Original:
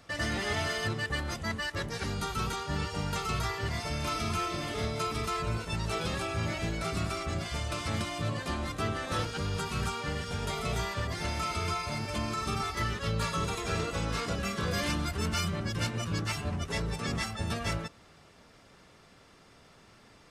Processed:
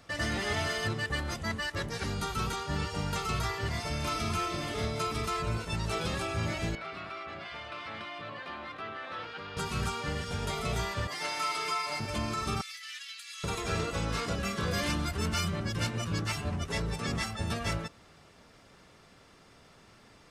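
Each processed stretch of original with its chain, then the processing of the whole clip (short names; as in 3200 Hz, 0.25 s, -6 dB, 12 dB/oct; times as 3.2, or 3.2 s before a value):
6.75–9.57 HPF 1500 Hz 6 dB/oct + air absorption 380 m + fast leveller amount 50%
11.07–12 HPF 230 Hz + low shelf 360 Hz -11.5 dB + comb 6.7 ms, depth 69%
12.61–13.44 inverse Chebyshev high-pass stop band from 600 Hz, stop band 60 dB + negative-ratio compressor -44 dBFS
whole clip: dry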